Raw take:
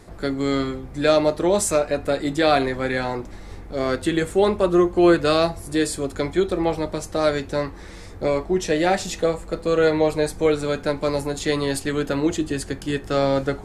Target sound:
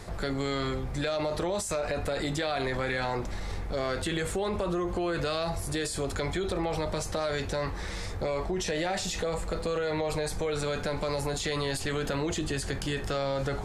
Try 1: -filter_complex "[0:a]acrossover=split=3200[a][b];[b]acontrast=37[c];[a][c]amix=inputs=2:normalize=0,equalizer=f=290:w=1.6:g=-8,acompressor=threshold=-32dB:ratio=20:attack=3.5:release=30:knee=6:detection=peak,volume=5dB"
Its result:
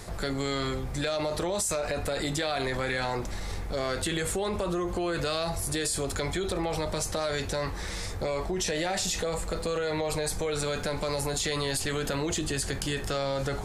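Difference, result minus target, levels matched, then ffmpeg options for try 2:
8000 Hz band +5.0 dB
-filter_complex "[0:a]acrossover=split=3200[a][b];[b]acontrast=37[c];[a][c]amix=inputs=2:normalize=0,equalizer=f=290:w=1.6:g=-8,acompressor=threshold=-32dB:ratio=20:attack=3.5:release=30:knee=6:detection=peak,highshelf=f=5.7k:g=-9,volume=5dB"

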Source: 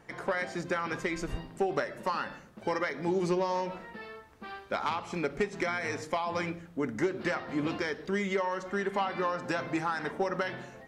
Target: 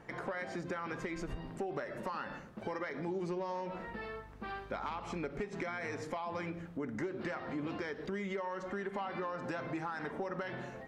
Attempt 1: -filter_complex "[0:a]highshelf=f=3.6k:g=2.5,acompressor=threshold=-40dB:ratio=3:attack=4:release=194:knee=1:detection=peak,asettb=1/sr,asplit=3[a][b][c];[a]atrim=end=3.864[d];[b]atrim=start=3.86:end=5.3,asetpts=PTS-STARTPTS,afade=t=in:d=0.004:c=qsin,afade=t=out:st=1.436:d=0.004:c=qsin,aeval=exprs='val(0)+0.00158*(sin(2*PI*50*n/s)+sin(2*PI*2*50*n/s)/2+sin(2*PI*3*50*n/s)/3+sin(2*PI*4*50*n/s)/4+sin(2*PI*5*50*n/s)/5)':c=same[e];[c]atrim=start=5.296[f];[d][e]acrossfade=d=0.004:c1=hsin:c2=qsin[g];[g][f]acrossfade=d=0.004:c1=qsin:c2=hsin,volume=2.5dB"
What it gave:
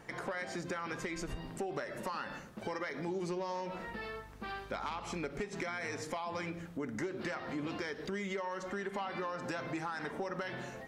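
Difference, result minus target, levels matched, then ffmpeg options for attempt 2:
8000 Hz band +8.0 dB
-filter_complex "[0:a]highshelf=f=3.6k:g=-9,acompressor=threshold=-40dB:ratio=3:attack=4:release=194:knee=1:detection=peak,asettb=1/sr,asplit=3[a][b][c];[a]atrim=end=3.864[d];[b]atrim=start=3.86:end=5.3,asetpts=PTS-STARTPTS,afade=t=in:d=0.004:c=qsin,afade=t=out:st=1.436:d=0.004:c=qsin,aeval=exprs='val(0)+0.00158*(sin(2*PI*50*n/s)+sin(2*PI*2*50*n/s)/2+sin(2*PI*3*50*n/s)/3+sin(2*PI*4*50*n/s)/4+sin(2*PI*5*50*n/s)/5)':c=same[e];[c]atrim=start=5.296[f];[d][e]acrossfade=d=0.004:c1=hsin:c2=qsin[g];[g][f]acrossfade=d=0.004:c1=qsin:c2=hsin,volume=2.5dB"

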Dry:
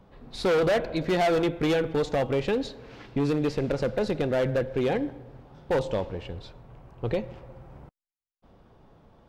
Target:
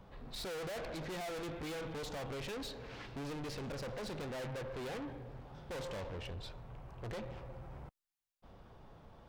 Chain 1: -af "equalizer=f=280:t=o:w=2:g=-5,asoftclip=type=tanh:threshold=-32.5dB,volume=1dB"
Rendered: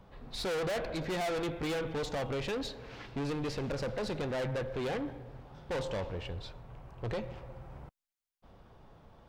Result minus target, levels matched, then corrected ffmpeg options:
soft clip: distortion -5 dB
-af "equalizer=f=280:t=o:w=2:g=-5,asoftclip=type=tanh:threshold=-41.5dB,volume=1dB"

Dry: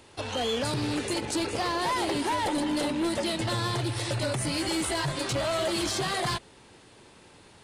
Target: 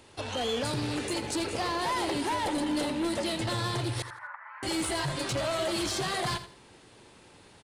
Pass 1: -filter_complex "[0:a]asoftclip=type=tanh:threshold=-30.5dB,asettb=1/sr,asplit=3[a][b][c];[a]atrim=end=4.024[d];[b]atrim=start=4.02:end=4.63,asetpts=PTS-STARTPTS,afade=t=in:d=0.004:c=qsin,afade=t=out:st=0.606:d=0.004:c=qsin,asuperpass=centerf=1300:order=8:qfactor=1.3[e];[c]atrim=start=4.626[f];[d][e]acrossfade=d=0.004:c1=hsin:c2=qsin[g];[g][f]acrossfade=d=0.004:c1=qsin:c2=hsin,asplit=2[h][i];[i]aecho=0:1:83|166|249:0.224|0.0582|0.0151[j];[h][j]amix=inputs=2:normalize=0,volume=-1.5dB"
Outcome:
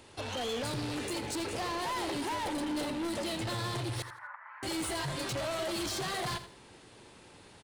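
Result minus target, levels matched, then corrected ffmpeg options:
soft clip: distortion +17 dB
-filter_complex "[0:a]asoftclip=type=tanh:threshold=-19dB,asettb=1/sr,asplit=3[a][b][c];[a]atrim=end=4.024[d];[b]atrim=start=4.02:end=4.63,asetpts=PTS-STARTPTS,afade=t=in:d=0.004:c=qsin,afade=t=out:st=0.606:d=0.004:c=qsin,asuperpass=centerf=1300:order=8:qfactor=1.3[e];[c]atrim=start=4.626[f];[d][e]acrossfade=d=0.004:c1=hsin:c2=qsin[g];[g][f]acrossfade=d=0.004:c1=qsin:c2=hsin,asplit=2[h][i];[i]aecho=0:1:83|166|249:0.224|0.0582|0.0151[j];[h][j]amix=inputs=2:normalize=0,volume=-1.5dB"

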